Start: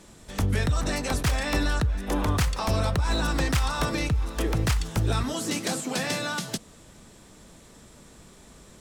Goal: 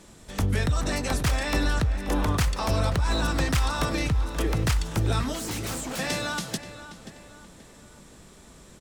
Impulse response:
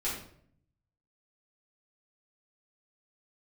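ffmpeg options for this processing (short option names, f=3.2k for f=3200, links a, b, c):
-filter_complex "[0:a]asettb=1/sr,asplit=3[a][b][c];[a]atrim=end=5.334[d];[b]atrim=start=5.33:end=5.99,asetpts=PTS-STARTPTS,afade=t=in:d=0.004:c=qsin,afade=t=out:st=0.656:d=0.004:c=qsin,aeval=exprs='0.0398*(abs(mod(val(0)/0.0398+3,4)-2)-1)':c=same[e];[c]atrim=start=5.986[f];[d][e]acrossfade=d=0.004:c1=hsin:c2=qsin[g];[g][f]acrossfade=d=0.004:c1=qsin:c2=hsin,asplit=2[h][i];[i]adelay=531,lowpass=f=3.7k:p=1,volume=-12.5dB,asplit=2[j][k];[k]adelay=531,lowpass=f=3.7k:p=1,volume=0.43,asplit=2[l][m];[m]adelay=531,lowpass=f=3.7k:p=1,volume=0.43,asplit=2[n][o];[o]adelay=531,lowpass=f=3.7k:p=1,volume=0.43[p];[h][j][l][n][p]amix=inputs=5:normalize=0"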